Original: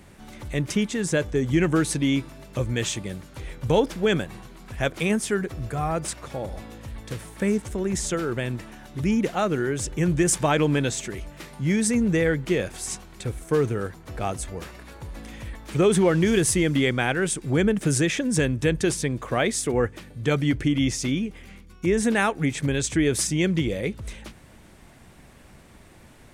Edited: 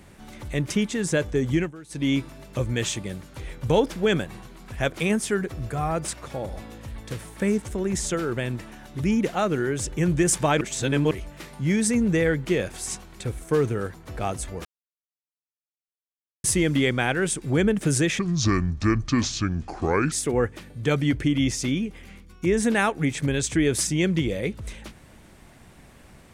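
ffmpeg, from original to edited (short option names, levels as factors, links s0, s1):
-filter_complex "[0:a]asplit=9[s0][s1][s2][s3][s4][s5][s6][s7][s8];[s0]atrim=end=1.72,asetpts=PTS-STARTPTS,afade=t=out:st=1.46:d=0.26:c=qsin:silence=0.0891251[s9];[s1]atrim=start=1.72:end=1.89,asetpts=PTS-STARTPTS,volume=0.0891[s10];[s2]atrim=start=1.89:end=10.612,asetpts=PTS-STARTPTS,afade=t=in:d=0.26:c=qsin:silence=0.0891251[s11];[s3]atrim=start=10.608:end=11.112,asetpts=PTS-STARTPTS,areverse[s12];[s4]atrim=start=11.108:end=14.65,asetpts=PTS-STARTPTS,afade=t=out:st=3.538:d=0.004:c=hsin[s13];[s5]atrim=start=14.65:end=16.44,asetpts=PTS-STARTPTS,volume=0[s14];[s6]atrim=start=16.44:end=18.194,asetpts=PTS-STARTPTS,afade=t=in:d=0.004:c=hsin[s15];[s7]atrim=start=18.19:end=19.52,asetpts=PTS-STARTPTS,asetrate=30429,aresample=44100,atrim=end_sample=85004,asetpts=PTS-STARTPTS[s16];[s8]atrim=start=19.516[s17];[s9][s10][s11]concat=n=3:v=0:a=1[s18];[s18][s12]acrossfade=d=0.004:c1=hsin:c2=hsin[s19];[s13][s14][s15]concat=n=3:v=0:a=1[s20];[s19][s20]acrossfade=d=0.004:c1=hsin:c2=hsin[s21];[s21][s16]acrossfade=d=0.004:c1=hsin:c2=hsin[s22];[s22][s17]acrossfade=d=0.004:c1=hsin:c2=hsin"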